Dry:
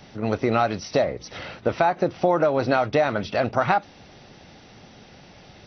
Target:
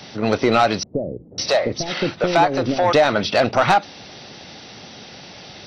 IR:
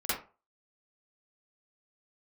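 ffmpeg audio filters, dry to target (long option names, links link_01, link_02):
-filter_complex "[0:a]highpass=frequency=150:poles=1,equalizer=frequency=4400:width_type=o:width=1.3:gain=7,asoftclip=type=tanh:threshold=-14dB,asettb=1/sr,asplit=3[link_01][link_02][link_03];[link_01]atrim=end=0.834[link_04];[link_02]atrim=start=0.83:end=2.93,asetpts=PTS-STARTPTS,afade=type=in:duration=0.004:curve=qsin,afade=type=out:start_time=2.096:duration=0.004:curve=qsin,acrossover=split=450[link_05][link_06];[link_06]adelay=550[link_07];[link_05][link_07]amix=inputs=2:normalize=0,atrim=end_sample=92610[link_08];[link_03]atrim=start=2.926[link_09];[link_04][link_08]acrossfade=duration=0.004:curve1=hsin:curve2=qsin[link_10];[link_10][link_09]acrossfade=duration=0.004:curve1=qsin:curve2=hsin,volume=7.5dB"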